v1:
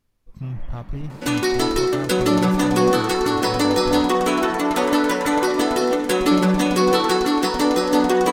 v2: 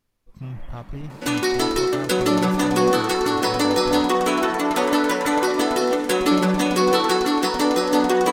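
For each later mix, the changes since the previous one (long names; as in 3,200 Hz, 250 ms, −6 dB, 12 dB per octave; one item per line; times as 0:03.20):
first sound: remove high-frequency loss of the air 85 metres
master: add low-shelf EQ 190 Hz −5.5 dB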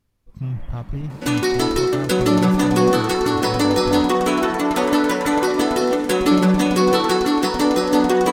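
master: add parametric band 77 Hz +9 dB 3 octaves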